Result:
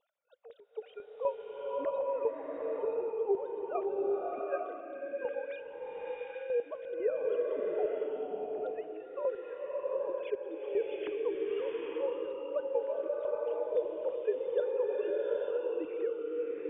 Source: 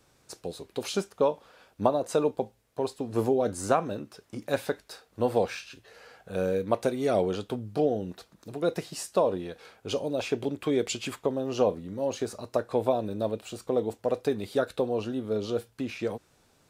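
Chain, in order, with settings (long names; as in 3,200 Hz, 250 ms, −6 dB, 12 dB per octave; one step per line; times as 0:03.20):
three sine waves on the formant tracks
square-wave tremolo 4 Hz, depth 65%, duty 40%
slow-attack reverb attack 840 ms, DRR −3.5 dB
level −7 dB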